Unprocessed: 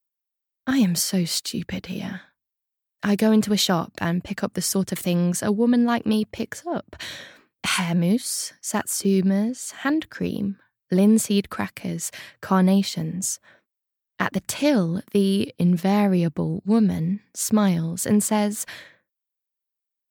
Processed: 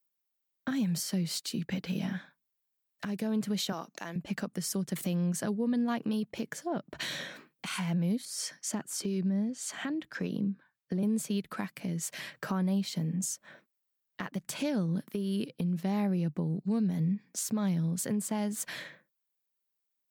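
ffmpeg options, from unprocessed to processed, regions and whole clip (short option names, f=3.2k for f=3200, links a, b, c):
-filter_complex "[0:a]asettb=1/sr,asplit=3[a][b][c];[a]atrim=end=3.724[d];[b]atrim=start=3.72:end=4.16,asetpts=PTS-STARTPTS,afade=t=in:d=0.004:c=qsin,afade=t=out:st=0.436:d=0.004:c=qsin,highpass=370,equalizer=f=6.3k:t=o:w=0.26:g=14.5[e];[c]atrim=start=4.156[f];[d][e]acrossfade=d=0.004:c1=hsin:c2=qsin[g];[g][f]acrossfade=d=0.004:c1=qsin:c2=hsin,asettb=1/sr,asplit=3[h][i][j];[h]atrim=end=8.254[k];[i]atrim=start=8.25:end=11.03,asetpts=PTS-STARTPTS,afade=t=in:d=0.004:c=qsin,afade=t=out:st=2.776:d=0.004:c=qsin,highshelf=f=11k:g=-11,acrossover=split=460[l][m];[l]aeval=exprs='val(0)*(1-0.5/2+0.5/2*cos(2*PI*1.8*n/s))':c=same[n];[m]aeval=exprs='val(0)*(1-0.5/2-0.5/2*cos(2*PI*1.8*n/s))':c=same[o];[n][o]amix=inputs=2:normalize=0[p];[j]atrim=start=11.026[q];[k][p]acrossfade=d=0.004:c1=hsin:c2=qsin[r];[r][q]acrossfade=d=0.004:c1=qsin:c2=hsin,lowshelf=f=120:t=q:w=3:g=-7,acompressor=threshold=-35dB:ratio=2.5,alimiter=level_in=1dB:limit=-24dB:level=0:latency=1:release=353,volume=-1dB,volume=2dB"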